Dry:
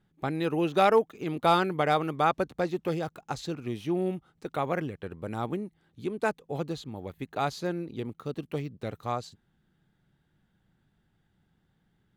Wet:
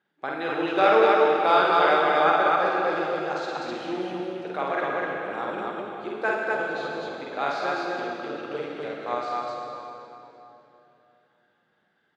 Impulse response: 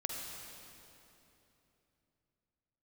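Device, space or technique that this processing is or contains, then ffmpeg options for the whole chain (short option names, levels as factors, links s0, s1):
station announcement: -filter_complex "[0:a]highpass=440,lowpass=4200,equalizer=f=1600:t=o:w=0.22:g=7,aecho=1:1:49.56|250.7:0.794|0.891[s0];[1:a]atrim=start_sample=2205[s1];[s0][s1]afir=irnorm=-1:irlink=0,volume=1.19"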